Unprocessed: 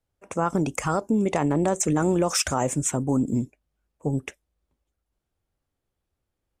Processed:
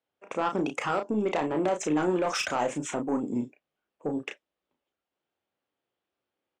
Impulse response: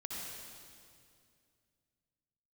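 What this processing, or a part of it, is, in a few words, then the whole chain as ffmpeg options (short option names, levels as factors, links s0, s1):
intercom: -filter_complex "[0:a]highpass=300,lowpass=3700,equalizer=f=3000:t=o:w=0.54:g=4,asoftclip=type=tanh:threshold=0.106,asplit=2[s0][s1];[s1]adelay=33,volume=0.501[s2];[s0][s2]amix=inputs=2:normalize=0"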